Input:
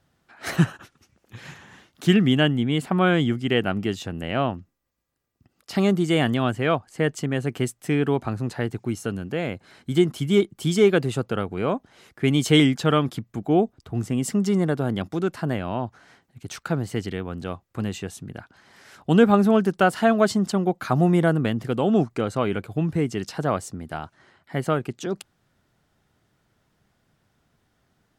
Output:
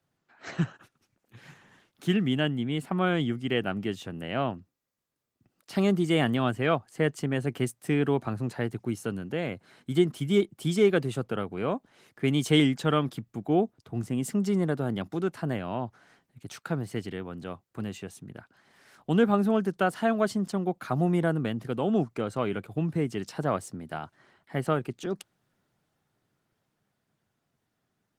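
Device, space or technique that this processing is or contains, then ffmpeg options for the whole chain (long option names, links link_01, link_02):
video call: -af "highpass=frequency=100:width=0.5412,highpass=frequency=100:width=1.3066,dynaudnorm=framelen=180:gausssize=31:maxgain=10dB,volume=-8.5dB" -ar 48000 -c:a libopus -b:a 24k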